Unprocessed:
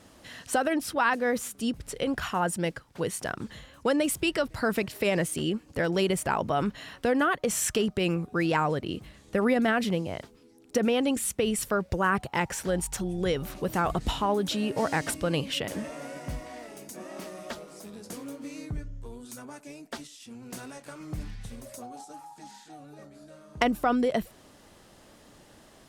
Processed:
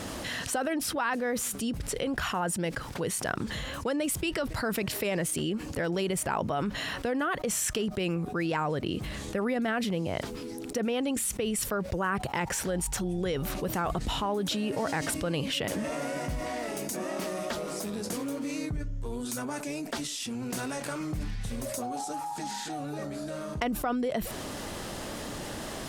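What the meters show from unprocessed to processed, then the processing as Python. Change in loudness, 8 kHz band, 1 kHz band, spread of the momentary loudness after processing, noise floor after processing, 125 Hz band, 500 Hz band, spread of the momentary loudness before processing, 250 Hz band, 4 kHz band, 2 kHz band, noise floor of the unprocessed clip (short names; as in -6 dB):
-3.0 dB, +1.5 dB, -3.0 dB, 7 LU, -39 dBFS, -0.5 dB, -3.0 dB, 18 LU, -2.0 dB, 0.0 dB, -2.5 dB, -56 dBFS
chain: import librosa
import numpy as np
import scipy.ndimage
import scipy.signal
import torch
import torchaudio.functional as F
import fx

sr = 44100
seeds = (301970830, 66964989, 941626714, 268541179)

y = fx.env_flatten(x, sr, amount_pct=70)
y = F.gain(torch.from_numpy(y), -7.0).numpy()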